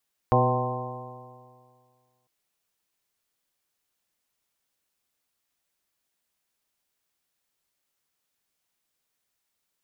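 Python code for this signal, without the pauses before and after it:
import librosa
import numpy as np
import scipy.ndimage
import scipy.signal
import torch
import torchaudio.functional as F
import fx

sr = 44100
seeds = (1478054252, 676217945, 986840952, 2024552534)

y = fx.additive_stiff(sr, length_s=1.95, hz=123.0, level_db=-21, upper_db=(-6.0, -7, -2, -5, -1, -8, -2.5), decay_s=2.0, stiffness=0.0021)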